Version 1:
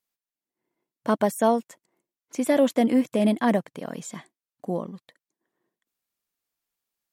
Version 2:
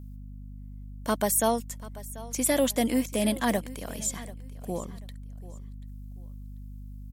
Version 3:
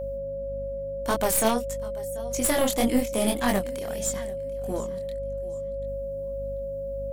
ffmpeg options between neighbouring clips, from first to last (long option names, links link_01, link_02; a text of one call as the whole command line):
ffmpeg -i in.wav -af "crystalizer=i=5:c=0,aeval=exprs='val(0)+0.0178*(sin(2*PI*50*n/s)+sin(2*PI*2*50*n/s)/2+sin(2*PI*3*50*n/s)/3+sin(2*PI*4*50*n/s)/4+sin(2*PI*5*50*n/s)/5)':channel_layout=same,aecho=1:1:738|1476:0.126|0.0352,volume=-5.5dB" out.wav
ffmpeg -i in.wav -af "aeval=exprs='0.251*(cos(1*acos(clip(val(0)/0.251,-1,1)))-cos(1*PI/2))+0.0112*(cos(4*acos(clip(val(0)/0.251,-1,1)))-cos(4*PI/2))+0.0631*(cos(6*acos(clip(val(0)/0.251,-1,1)))-cos(6*PI/2))+0.0316*(cos(8*acos(clip(val(0)/0.251,-1,1)))-cos(8*PI/2))':channel_layout=same,flanger=delay=20:depth=7.4:speed=1.7,aeval=exprs='val(0)+0.02*sin(2*PI*550*n/s)':channel_layout=same,volume=4dB" out.wav